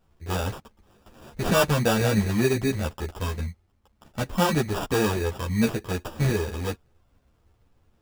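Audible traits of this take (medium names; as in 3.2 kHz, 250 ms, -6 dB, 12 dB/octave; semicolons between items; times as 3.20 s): aliases and images of a low sample rate 2.1 kHz, jitter 0%; a shimmering, thickened sound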